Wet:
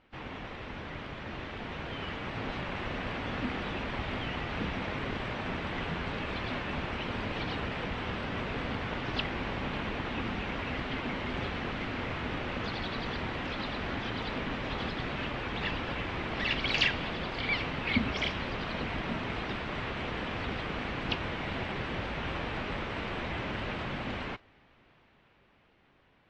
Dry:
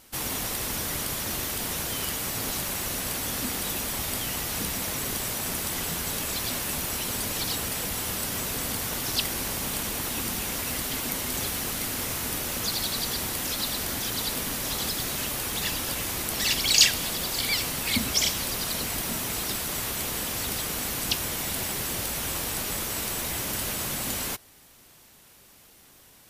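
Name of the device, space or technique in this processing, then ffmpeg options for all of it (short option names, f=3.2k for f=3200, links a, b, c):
action camera in a waterproof case: -af "lowpass=f=2.8k:w=0.5412,lowpass=f=2.8k:w=1.3066,dynaudnorm=f=310:g=13:m=6.5dB,volume=-6dB" -ar 22050 -c:a aac -b:a 48k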